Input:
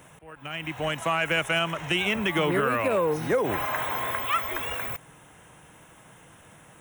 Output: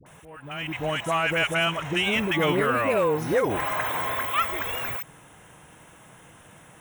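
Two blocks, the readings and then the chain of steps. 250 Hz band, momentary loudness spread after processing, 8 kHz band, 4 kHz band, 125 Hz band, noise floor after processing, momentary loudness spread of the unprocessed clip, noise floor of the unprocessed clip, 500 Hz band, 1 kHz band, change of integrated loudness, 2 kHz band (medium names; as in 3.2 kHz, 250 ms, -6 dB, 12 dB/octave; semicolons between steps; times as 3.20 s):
+1.5 dB, 10 LU, +1.5 dB, +1.5 dB, +1.5 dB, -51 dBFS, 10 LU, -53 dBFS, +1.5 dB, +1.5 dB, +1.5 dB, +1.5 dB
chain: phase dispersion highs, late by 63 ms, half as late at 760 Hz; trim +1.5 dB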